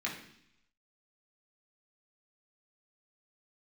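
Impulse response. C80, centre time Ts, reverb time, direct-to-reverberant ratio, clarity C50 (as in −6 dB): 10.0 dB, 29 ms, 0.70 s, −4.0 dB, 6.5 dB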